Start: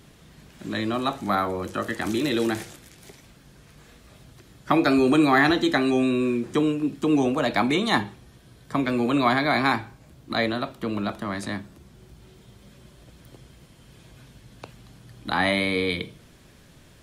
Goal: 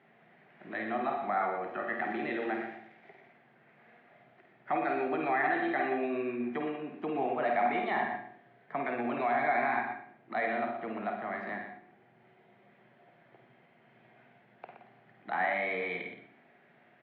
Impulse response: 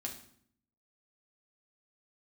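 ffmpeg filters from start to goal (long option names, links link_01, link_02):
-filter_complex "[0:a]equalizer=frequency=280:width=2:gain=-3,asplit=2[link_01][link_02];[1:a]atrim=start_sample=2205,adelay=50[link_03];[link_02][link_03]afir=irnorm=-1:irlink=0,volume=-3dB[link_04];[link_01][link_04]amix=inputs=2:normalize=0,alimiter=limit=-15.5dB:level=0:latency=1:release=18,highpass=frequency=190:width=0.5412,highpass=frequency=190:width=1.3066,equalizer=frequency=200:width_type=q:width=4:gain=-6,equalizer=frequency=280:width_type=q:width=4:gain=-8,equalizer=frequency=510:width_type=q:width=4:gain=-4,equalizer=frequency=730:width_type=q:width=4:gain=9,equalizer=frequency=1100:width_type=q:width=4:gain=-5,equalizer=frequency=2000:width_type=q:width=4:gain=6,lowpass=frequency=2300:width=0.5412,lowpass=frequency=2300:width=1.3066,aecho=1:1:121:0.422,volume=-7dB"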